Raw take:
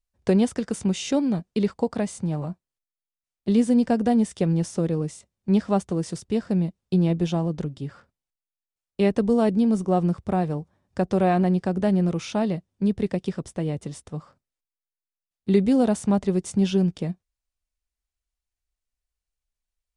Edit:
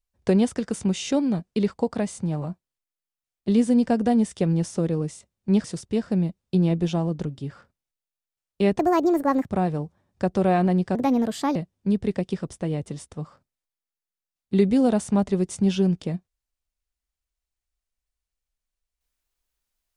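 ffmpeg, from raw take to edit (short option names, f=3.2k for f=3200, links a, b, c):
-filter_complex "[0:a]asplit=6[a][b][c][d][e][f];[a]atrim=end=5.642[g];[b]atrim=start=6.028:end=9.184[h];[c]atrim=start=9.18:end=10.26,asetpts=PTS-STARTPTS,asetrate=67032,aresample=44100,atrim=end_sample=31334,asetpts=PTS-STARTPTS[i];[d]atrim=start=10.256:end=11.714[j];[e]atrim=start=11.71:end=12.51,asetpts=PTS-STARTPTS,asetrate=58212,aresample=44100,atrim=end_sample=26727,asetpts=PTS-STARTPTS[k];[f]atrim=start=12.506[l];[g][h]acrossfade=d=0.004:c1=hsin:c2=hsin[m];[m][i]acrossfade=d=0.004:c1=hsin:c2=hsin[n];[n][j]acrossfade=d=0.004:c1=hsin:c2=hsin[o];[o][k]acrossfade=d=0.004:c1=hsin:c2=hsin[p];[p][l]acrossfade=d=0.004:c1=hsin:c2=hsin"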